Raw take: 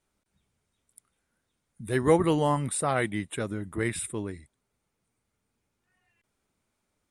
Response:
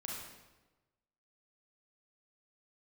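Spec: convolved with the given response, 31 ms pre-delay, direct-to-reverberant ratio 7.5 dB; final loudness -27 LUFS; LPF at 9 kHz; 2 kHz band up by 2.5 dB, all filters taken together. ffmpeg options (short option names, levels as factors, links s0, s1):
-filter_complex "[0:a]lowpass=9000,equalizer=f=2000:t=o:g=3,asplit=2[s0][s1];[1:a]atrim=start_sample=2205,adelay=31[s2];[s1][s2]afir=irnorm=-1:irlink=0,volume=0.447[s3];[s0][s3]amix=inputs=2:normalize=0"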